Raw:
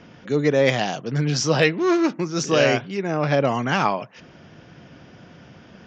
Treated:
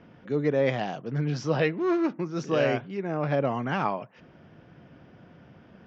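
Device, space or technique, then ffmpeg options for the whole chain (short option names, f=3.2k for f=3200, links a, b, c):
through cloth: -af "lowpass=6.3k,highshelf=f=3.4k:g=-14.5,volume=-5.5dB"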